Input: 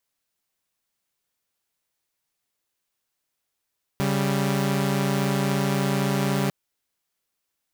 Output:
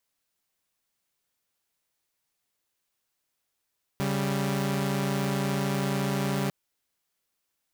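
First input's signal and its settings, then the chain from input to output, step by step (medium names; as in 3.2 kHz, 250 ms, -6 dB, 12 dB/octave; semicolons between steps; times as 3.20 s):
chord C#3/G3 saw, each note -21.5 dBFS 2.50 s
peak limiter -21 dBFS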